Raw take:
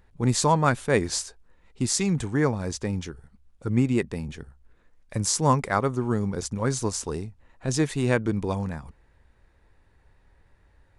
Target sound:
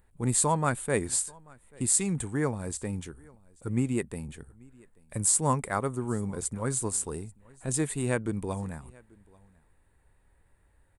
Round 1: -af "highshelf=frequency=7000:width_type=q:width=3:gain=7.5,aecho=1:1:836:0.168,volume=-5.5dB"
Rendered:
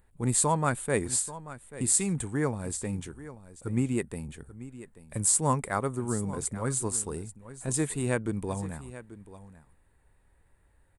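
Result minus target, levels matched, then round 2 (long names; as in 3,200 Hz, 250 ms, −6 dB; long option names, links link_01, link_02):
echo-to-direct +10.5 dB
-af "highshelf=frequency=7000:width_type=q:width=3:gain=7.5,aecho=1:1:836:0.0501,volume=-5.5dB"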